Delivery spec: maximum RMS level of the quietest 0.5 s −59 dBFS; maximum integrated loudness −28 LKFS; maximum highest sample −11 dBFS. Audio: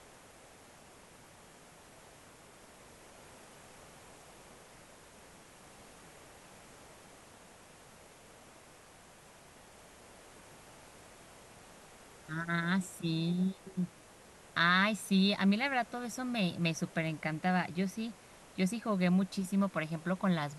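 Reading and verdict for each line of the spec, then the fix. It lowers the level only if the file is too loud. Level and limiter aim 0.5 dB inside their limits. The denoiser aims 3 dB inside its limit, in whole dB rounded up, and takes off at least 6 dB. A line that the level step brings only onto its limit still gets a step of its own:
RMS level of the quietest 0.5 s −57 dBFS: out of spec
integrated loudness −32.5 LKFS: in spec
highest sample −16.0 dBFS: in spec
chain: broadband denoise 6 dB, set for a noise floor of −57 dBFS

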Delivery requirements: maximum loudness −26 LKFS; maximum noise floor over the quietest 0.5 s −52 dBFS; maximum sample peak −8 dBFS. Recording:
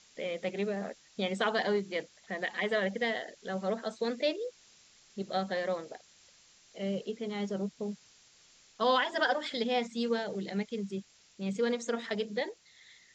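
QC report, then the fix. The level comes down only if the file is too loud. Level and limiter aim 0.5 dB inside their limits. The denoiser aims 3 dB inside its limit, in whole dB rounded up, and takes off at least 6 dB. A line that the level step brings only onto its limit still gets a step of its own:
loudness −33.5 LKFS: in spec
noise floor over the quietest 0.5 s −62 dBFS: in spec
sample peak −15.0 dBFS: in spec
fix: no processing needed

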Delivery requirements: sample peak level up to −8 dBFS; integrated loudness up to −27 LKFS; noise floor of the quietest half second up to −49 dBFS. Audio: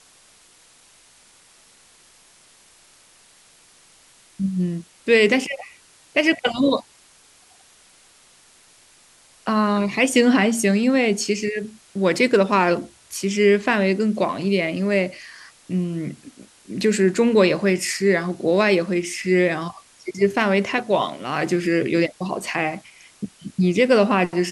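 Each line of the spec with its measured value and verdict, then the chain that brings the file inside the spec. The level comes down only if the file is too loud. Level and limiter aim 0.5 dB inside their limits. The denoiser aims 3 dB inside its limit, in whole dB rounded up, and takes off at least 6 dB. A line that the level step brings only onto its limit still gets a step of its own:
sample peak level −2.5 dBFS: out of spec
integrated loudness −20.0 LKFS: out of spec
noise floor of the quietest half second −53 dBFS: in spec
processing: level −7.5 dB

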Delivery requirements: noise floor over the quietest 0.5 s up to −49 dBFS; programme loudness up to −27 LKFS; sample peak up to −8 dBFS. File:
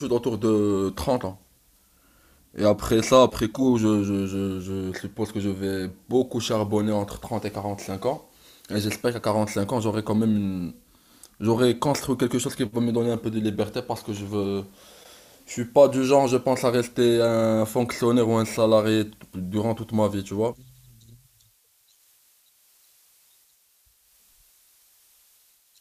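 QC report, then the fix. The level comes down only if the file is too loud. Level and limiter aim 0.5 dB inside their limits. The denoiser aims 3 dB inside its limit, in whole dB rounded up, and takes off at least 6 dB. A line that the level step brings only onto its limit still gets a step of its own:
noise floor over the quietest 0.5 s −63 dBFS: in spec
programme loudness −24.0 LKFS: out of spec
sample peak −4.5 dBFS: out of spec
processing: level −3.5 dB
brickwall limiter −8.5 dBFS

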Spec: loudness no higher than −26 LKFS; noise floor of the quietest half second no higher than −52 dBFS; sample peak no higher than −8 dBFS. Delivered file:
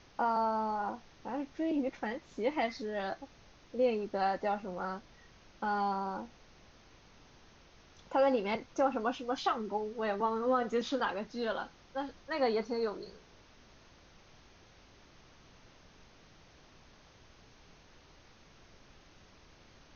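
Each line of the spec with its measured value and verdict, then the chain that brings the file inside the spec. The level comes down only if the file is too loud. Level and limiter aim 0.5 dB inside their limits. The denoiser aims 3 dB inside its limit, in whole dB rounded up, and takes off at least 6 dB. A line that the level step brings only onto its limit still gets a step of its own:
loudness −34.5 LKFS: in spec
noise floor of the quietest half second −59 dBFS: in spec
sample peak −18.0 dBFS: in spec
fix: no processing needed

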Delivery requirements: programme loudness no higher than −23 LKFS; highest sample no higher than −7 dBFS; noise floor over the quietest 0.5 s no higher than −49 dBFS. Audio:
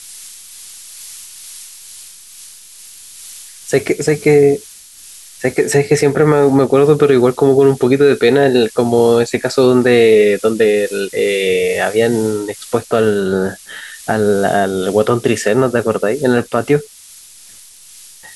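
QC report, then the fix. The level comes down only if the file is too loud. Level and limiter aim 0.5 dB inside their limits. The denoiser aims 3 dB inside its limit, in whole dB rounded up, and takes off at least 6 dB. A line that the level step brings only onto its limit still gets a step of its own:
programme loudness −13.5 LKFS: out of spec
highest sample −1.0 dBFS: out of spec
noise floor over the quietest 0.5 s −40 dBFS: out of spec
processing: level −10 dB

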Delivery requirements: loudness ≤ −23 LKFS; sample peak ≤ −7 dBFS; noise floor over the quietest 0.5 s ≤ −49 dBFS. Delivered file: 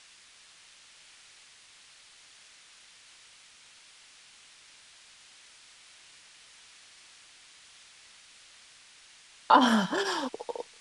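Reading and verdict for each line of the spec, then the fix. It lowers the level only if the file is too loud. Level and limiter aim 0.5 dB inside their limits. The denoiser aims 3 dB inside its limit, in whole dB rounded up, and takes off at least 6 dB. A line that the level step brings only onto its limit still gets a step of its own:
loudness −26.0 LKFS: in spec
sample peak −6.0 dBFS: out of spec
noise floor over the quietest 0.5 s −56 dBFS: in spec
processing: brickwall limiter −7.5 dBFS

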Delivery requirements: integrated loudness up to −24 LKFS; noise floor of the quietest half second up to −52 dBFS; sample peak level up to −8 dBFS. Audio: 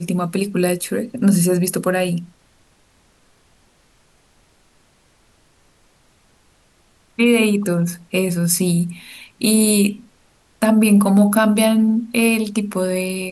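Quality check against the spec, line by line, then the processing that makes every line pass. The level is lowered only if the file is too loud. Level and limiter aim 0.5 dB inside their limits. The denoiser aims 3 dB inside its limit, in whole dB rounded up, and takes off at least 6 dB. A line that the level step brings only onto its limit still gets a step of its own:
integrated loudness −17.5 LKFS: out of spec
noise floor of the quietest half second −57 dBFS: in spec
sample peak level −5.0 dBFS: out of spec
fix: level −7 dB

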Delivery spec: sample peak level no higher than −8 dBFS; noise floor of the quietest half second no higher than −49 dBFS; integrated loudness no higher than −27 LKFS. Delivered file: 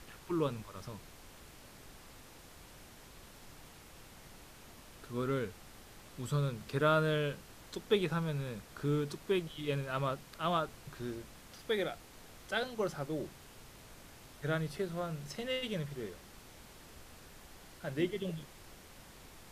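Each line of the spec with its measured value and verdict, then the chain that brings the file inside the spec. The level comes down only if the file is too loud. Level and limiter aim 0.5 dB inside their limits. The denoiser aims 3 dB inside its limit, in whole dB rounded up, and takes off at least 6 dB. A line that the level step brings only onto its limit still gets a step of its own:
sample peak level −16.5 dBFS: in spec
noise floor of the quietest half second −55 dBFS: in spec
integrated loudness −36.5 LKFS: in spec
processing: no processing needed

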